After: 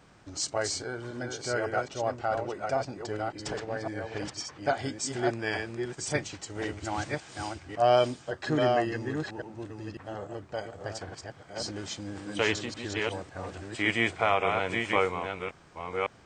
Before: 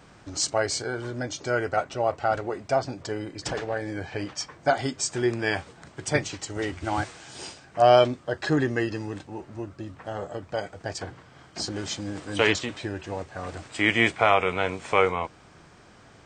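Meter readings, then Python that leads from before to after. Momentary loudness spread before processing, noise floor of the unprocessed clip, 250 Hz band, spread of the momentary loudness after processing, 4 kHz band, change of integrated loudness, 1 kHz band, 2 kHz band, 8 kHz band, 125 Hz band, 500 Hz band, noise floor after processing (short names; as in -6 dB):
16 LU, -53 dBFS, -4.0 dB, 14 LU, -4.0 dB, -4.5 dB, -4.0 dB, -4.0 dB, -4.0 dB, -4.0 dB, -4.0 dB, -55 dBFS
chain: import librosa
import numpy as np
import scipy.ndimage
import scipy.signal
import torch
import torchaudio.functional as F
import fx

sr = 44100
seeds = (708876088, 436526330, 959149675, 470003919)

y = fx.reverse_delay(x, sr, ms=554, wet_db=-4.0)
y = F.gain(torch.from_numpy(y), -5.5).numpy()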